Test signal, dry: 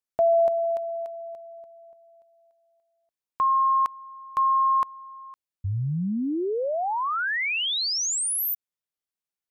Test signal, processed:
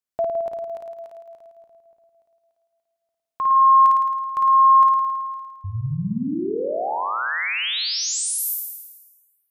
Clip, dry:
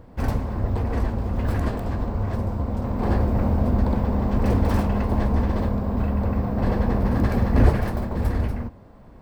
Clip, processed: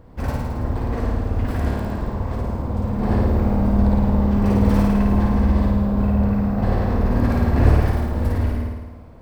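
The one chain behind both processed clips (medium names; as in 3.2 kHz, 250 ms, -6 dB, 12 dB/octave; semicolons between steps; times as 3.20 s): flutter echo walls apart 9.3 m, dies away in 1.2 s; trim -1.5 dB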